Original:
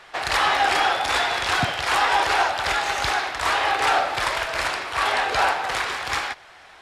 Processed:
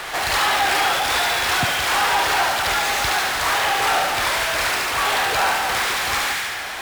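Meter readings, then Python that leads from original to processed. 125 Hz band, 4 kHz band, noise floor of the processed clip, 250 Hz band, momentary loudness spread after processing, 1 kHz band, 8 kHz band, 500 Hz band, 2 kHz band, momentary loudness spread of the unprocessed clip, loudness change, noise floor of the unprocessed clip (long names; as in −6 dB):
+2.0 dB, +4.5 dB, −28 dBFS, +2.5 dB, 3 LU, +1.0 dB, +8.5 dB, +1.5 dB, +3.0 dB, 6 LU, +3.0 dB, −47 dBFS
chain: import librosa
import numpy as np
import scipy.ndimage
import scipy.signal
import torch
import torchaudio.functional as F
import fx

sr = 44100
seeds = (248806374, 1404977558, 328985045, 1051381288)

p1 = fx.echo_wet_highpass(x, sr, ms=71, feedback_pct=53, hz=1500.0, wet_db=-3.0)
p2 = fx.fuzz(p1, sr, gain_db=46.0, gate_db=-53.0)
p3 = p1 + (p2 * 10.0 ** (-8.5 / 20.0))
p4 = fx.high_shelf(p3, sr, hz=10000.0, db=4.5)
y = p4 * 10.0 ** (-4.0 / 20.0)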